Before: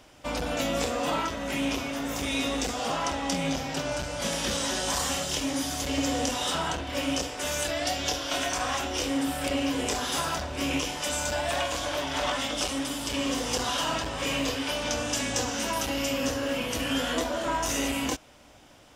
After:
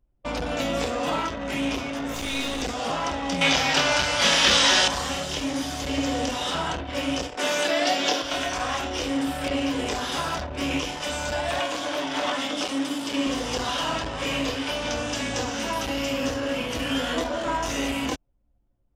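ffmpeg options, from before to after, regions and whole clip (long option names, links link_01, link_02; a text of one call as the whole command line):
ffmpeg -i in.wav -filter_complex "[0:a]asettb=1/sr,asplit=3[link_01][link_02][link_03];[link_01]atrim=end=2.144[link_04];[link_02]atrim=start=2.14:end=2.62,asetpts=PTS-STARTPTS,afade=type=in:duration=0.004:curve=qsin,afade=type=out:start_time=0.476:duration=0.004:curve=qsin,highshelf=frequency=4200:gain=9,aeval=exprs='clip(val(0),-1,0.0211)':channel_layout=same,bandreject=frequency=5400:width=20[link_05];[link_03]atrim=start=2.616[link_06];[link_04][link_05]acrossfade=duration=0.004:curve1=hsin:curve2=qsin[link_07];[link_07][link_06]acrossfade=duration=0.004:curve1=qsin:curve2=hsin,asettb=1/sr,asplit=3[link_08][link_09][link_10];[link_08]atrim=end=3.414[link_11];[link_09]atrim=start=3.41:end=4.88,asetpts=PTS-STARTPTS,afade=type=in:duration=0.004:curve=qsin,afade=type=out:start_time=1.466:duration=0.004:curve=qsin,tiltshelf=frequency=710:gain=-7.5,acontrast=75,asplit=2[link_12][link_13];[link_13]adelay=28,volume=-11dB[link_14];[link_12][link_14]amix=inputs=2:normalize=0,atrim=end_sample=64827[link_15];[link_10]atrim=start=4.876[link_16];[link_11][link_15]acrossfade=duration=0.004:curve1=hsin:curve2=qsin[link_17];[link_17][link_16]acrossfade=duration=0.004:curve1=qsin:curve2=hsin,asettb=1/sr,asplit=3[link_18][link_19][link_20];[link_18]atrim=end=7.374[link_21];[link_19]atrim=start=7.37:end=8.22,asetpts=PTS-STARTPTS,afade=type=in:duration=0.004:curve=qsin,afade=type=out:start_time=0.846:duration=0.004:curve=qsin,highpass=frequency=200:width=0.5412,highpass=frequency=200:width=1.3066,acontrast=31[link_22];[link_20]atrim=start=8.216[link_23];[link_21][link_22]acrossfade=duration=0.004:curve1=hsin:curve2=qsin[link_24];[link_24][link_23]acrossfade=duration=0.004:curve1=qsin:curve2=hsin,asettb=1/sr,asplit=3[link_25][link_26][link_27];[link_25]atrim=end=11.594[link_28];[link_26]atrim=start=11.59:end=13.27,asetpts=PTS-STARTPTS,afade=type=in:duration=0.004:curve=qsin,afade=type=out:start_time=1.676:duration=0.004:curve=qsin,highpass=180,equalizer=frequency=290:width_type=o:width=0.21:gain=6.5[link_29];[link_27]atrim=start=13.266[link_30];[link_28][link_29]acrossfade=duration=0.004:curve1=hsin:curve2=qsin[link_31];[link_31][link_30]acrossfade=duration=0.004:curve1=qsin:curve2=hsin,anlmdn=3.98,acrossover=split=5300[link_32][link_33];[link_33]acompressor=threshold=-44dB:ratio=4:attack=1:release=60[link_34];[link_32][link_34]amix=inputs=2:normalize=0,volume=2dB" out.wav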